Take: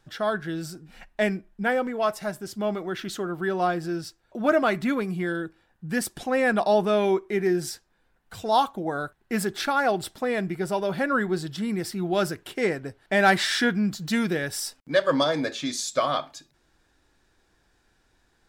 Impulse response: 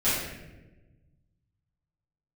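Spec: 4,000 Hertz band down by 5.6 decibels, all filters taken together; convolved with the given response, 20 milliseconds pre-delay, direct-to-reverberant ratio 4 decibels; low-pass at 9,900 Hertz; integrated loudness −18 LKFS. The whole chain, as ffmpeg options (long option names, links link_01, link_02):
-filter_complex "[0:a]lowpass=9900,equalizer=frequency=4000:width_type=o:gain=-7,asplit=2[link_01][link_02];[1:a]atrim=start_sample=2205,adelay=20[link_03];[link_02][link_03]afir=irnorm=-1:irlink=0,volume=-17dB[link_04];[link_01][link_04]amix=inputs=2:normalize=0,volume=6.5dB"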